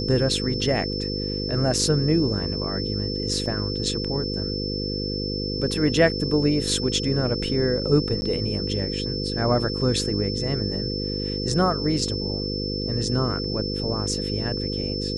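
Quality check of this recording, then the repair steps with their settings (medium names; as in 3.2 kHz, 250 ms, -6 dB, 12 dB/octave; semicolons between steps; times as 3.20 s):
buzz 50 Hz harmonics 10 -29 dBFS
whine 5.3 kHz -30 dBFS
3.46 s: dropout 3.8 ms
8.21–8.22 s: dropout 10 ms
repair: band-stop 5.3 kHz, Q 30; de-hum 50 Hz, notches 10; interpolate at 3.46 s, 3.8 ms; interpolate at 8.21 s, 10 ms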